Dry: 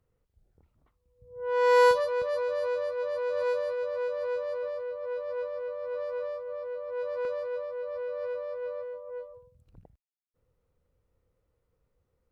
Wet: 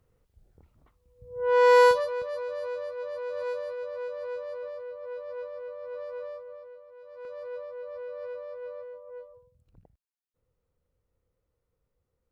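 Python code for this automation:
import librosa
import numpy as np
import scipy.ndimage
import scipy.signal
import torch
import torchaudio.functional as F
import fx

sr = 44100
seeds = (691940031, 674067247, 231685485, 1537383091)

y = fx.gain(x, sr, db=fx.line((1.54, 6.0), (2.27, -4.0), (6.37, -4.0), (7.0, -17.0), (7.48, -4.0)))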